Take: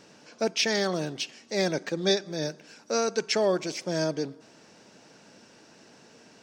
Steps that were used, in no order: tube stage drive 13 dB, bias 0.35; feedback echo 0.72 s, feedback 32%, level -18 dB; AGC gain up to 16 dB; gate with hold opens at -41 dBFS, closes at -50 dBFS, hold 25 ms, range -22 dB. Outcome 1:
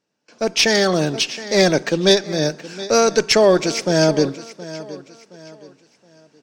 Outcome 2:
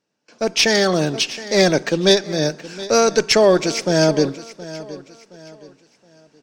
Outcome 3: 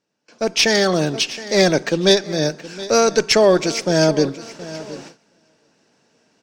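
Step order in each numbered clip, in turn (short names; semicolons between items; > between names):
gate with hold > feedback echo > tube stage > AGC; tube stage > gate with hold > feedback echo > AGC; tube stage > feedback echo > gate with hold > AGC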